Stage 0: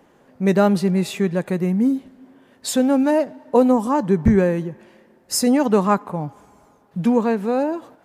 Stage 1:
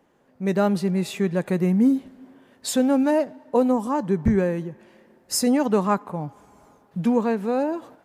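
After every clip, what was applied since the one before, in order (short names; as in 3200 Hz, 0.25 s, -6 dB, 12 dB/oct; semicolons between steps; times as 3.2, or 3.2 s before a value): AGC gain up to 11.5 dB; gain -8.5 dB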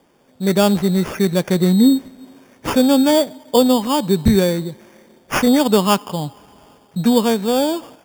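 sample-and-hold 11×; gain +6 dB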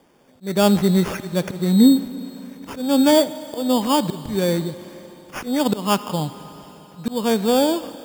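auto swell 0.279 s; Schroeder reverb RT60 4 s, combs from 25 ms, DRR 14.5 dB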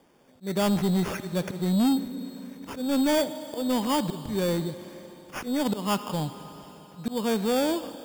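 soft clip -15 dBFS, distortion -11 dB; gain -4 dB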